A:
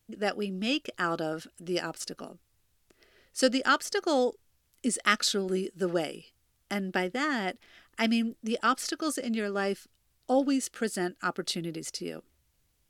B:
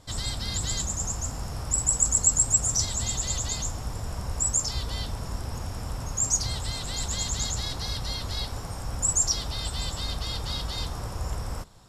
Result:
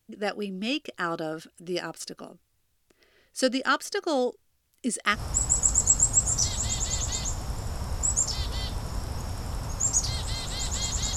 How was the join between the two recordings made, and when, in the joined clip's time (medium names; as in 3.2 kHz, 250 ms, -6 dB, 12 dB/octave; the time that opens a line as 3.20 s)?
A
5.16 s: go over to B from 1.53 s, crossfade 0.12 s